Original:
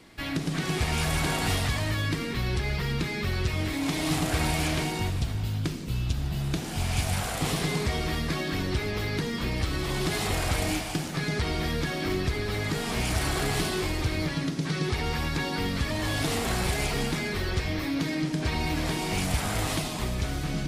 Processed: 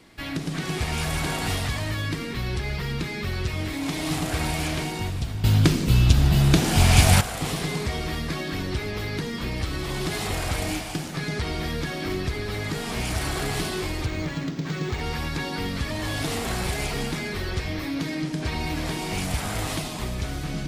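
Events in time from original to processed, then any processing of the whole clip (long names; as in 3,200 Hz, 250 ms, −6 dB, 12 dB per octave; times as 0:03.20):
0:05.44–0:07.21: clip gain +11.5 dB
0:14.06–0:15.01: linearly interpolated sample-rate reduction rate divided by 4×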